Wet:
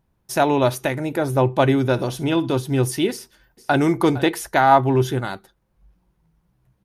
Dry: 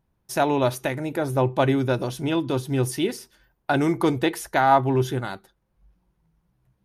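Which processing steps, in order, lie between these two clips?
0:01.78–0:02.56: flutter between parallel walls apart 10.5 metres, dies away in 0.2 s
0:03.11–0:03.82: delay throw 460 ms, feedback 10%, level −16 dB
level +3.5 dB

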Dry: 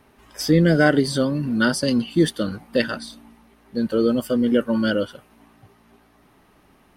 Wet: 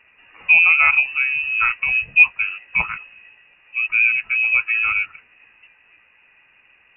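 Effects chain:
hollow resonant body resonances 330/850 Hz, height 8 dB
voice inversion scrambler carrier 2,800 Hz
level −1 dB

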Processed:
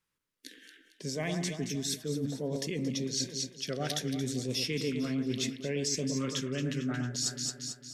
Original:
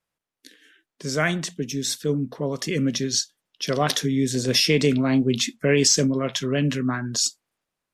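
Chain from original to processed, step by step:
auto-filter notch saw up 0.65 Hz 630–1,700 Hz
delay that swaps between a low-pass and a high-pass 113 ms, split 1,700 Hz, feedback 66%, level −6 dB
reversed playback
downward compressor 5 to 1, threshold −31 dBFS, peak gain reduction 15.5 dB
reversed playback

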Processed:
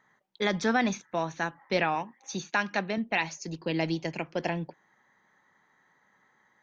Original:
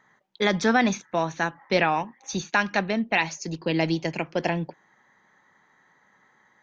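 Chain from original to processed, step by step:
0:01.95–0:02.98: high-pass filter 130 Hz
level −5 dB

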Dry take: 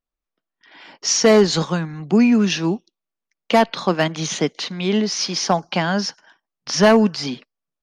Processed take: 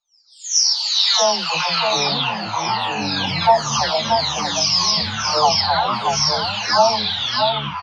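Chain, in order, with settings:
every frequency bin delayed by itself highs early, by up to 740 ms
three-way crossover with the lows and the highs turned down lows −19 dB, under 430 Hz, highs −22 dB, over 7,400 Hz
on a send: single-tap delay 631 ms −6 dB
on the sum: delay with pitch and tempo change per echo 139 ms, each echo −7 semitones, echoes 2
drawn EQ curve 170 Hz 0 dB, 370 Hz −16 dB, 890 Hz +7 dB, 1,900 Hz −8 dB, 5,000 Hz +9 dB, 9,400 Hz −10 dB
in parallel at −2 dB: brickwall limiter −15.5 dBFS, peak gain reduction 11.5 dB

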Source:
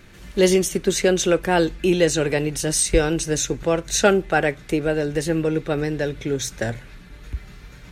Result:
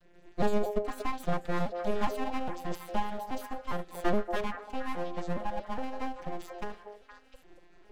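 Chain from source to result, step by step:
vocoder with an arpeggio as carrier minor triad, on F3, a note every 412 ms
full-wave rectification
echo through a band-pass that steps 234 ms, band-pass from 560 Hz, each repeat 1.4 octaves, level −3 dB
level −8.5 dB

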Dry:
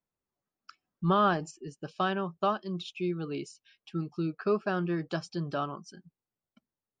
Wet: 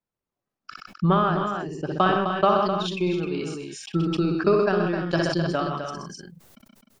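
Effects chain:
high-shelf EQ 5,700 Hz −9 dB, from 0:02.48 +3.5 dB
transient designer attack +10 dB, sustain −5 dB
multi-tap delay 60/125/159/258/302 ms −9.5/−11.5/−17.5/−7.5/−11.5 dB
level that may fall only so fast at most 29 dB per second

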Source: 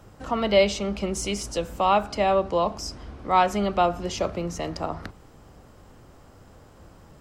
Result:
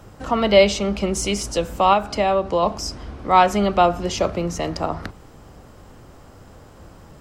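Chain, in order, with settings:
0:01.93–0:02.63: downward compressor 2 to 1, threshold −23 dBFS, peak gain reduction 4.5 dB
level +5.5 dB

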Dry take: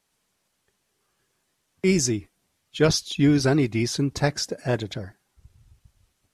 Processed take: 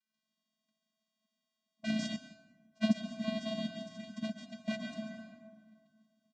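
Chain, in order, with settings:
samples in bit-reversed order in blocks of 16 samples
gate on every frequency bin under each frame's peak −10 dB weak
parametric band 410 Hz +4 dB 1.2 octaves
phaser with its sweep stopped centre 360 Hz, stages 4
flanger swept by the level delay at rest 2.4 ms, full sweep at −25 dBFS
tube saturation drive 22 dB, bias 0.65
channel vocoder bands 8, square 218 Hz
high-frequency loss of the air 62 metres
single-tap delay 140 ms −12 dB
convolution reverb RT60 1.9 s, pre-delay 107 ms, DRR 3.5 dB
0:02.16–0:04.68: expander for the loud parts 1.5 to 1, over −56 dBFS
level +6 dB

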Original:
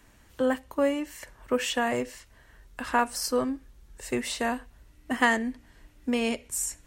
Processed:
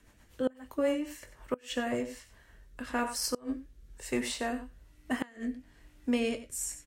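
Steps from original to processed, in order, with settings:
double-tracking delay 20 ms −10 dB
single-tap delay 93 ms −13 dB
rotating-speaker cabinet horn 8 Hz, later 1.1 Hz, at 0:00.54
gate with flip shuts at −16 dBFS, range −28 dB
level −2 dB

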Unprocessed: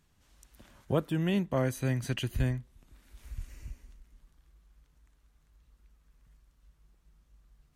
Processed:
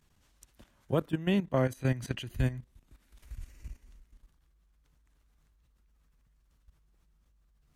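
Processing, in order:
output level in coarse steps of 14 dB
0:01.02–0:02.34: high-shelf EQ 5,600 Hz −5 dB
level +3 dB

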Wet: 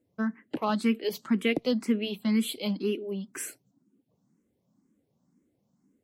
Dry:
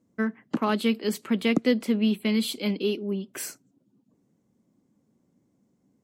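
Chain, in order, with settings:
frequency shifter mixed with the dry sound +2 Hz

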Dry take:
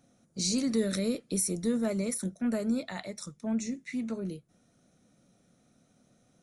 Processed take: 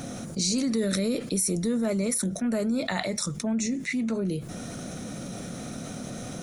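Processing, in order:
envelope flattener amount 70%

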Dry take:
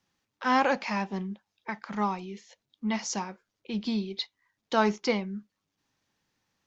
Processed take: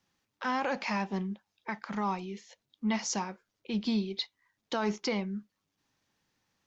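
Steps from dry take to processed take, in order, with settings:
brickwall limiter −20.5 dBFS, peak gain reduction 10 dB

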